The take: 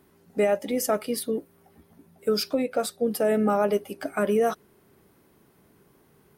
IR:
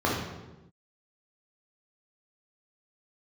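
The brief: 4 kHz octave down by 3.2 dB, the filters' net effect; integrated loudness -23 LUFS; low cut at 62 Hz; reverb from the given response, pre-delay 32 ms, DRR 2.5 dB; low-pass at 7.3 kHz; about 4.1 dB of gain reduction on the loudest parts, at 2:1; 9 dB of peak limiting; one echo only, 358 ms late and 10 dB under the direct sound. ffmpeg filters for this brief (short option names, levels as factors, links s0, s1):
-filter_complex "[0:a]highpass=62,lowpass=7300,equalizer=f=4000:t=o:g=-3.5,acompressor=threshold=0.0501:ratio=2,alimiter=level_in=1.12:limit=0.0631:level=0:latency=1,volume=0.891,aecho=1:1:358:0.316,asplit=2[s0][s1];[1:a]atrim=start_sample=2205,adelay=32[s2];[s1][s2]afir=irnorm=-1:irlink=0,volume=0.141[s3];[s0][s3]amix=inputs=2:normalize=0,volume=2.37"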